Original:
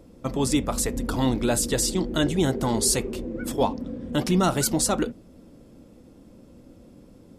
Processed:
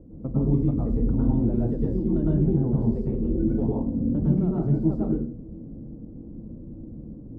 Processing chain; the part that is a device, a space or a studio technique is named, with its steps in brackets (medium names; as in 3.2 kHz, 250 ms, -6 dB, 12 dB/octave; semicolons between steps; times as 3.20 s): television next door (compression, threshold -28 dBFS, peak gain reduction 11 dB; low-pass 330 Hz 12 dB/octave; reverberation RT60 0.45 s, pre-delay 100 ms, DRR -5.5 dB); trim +4 dB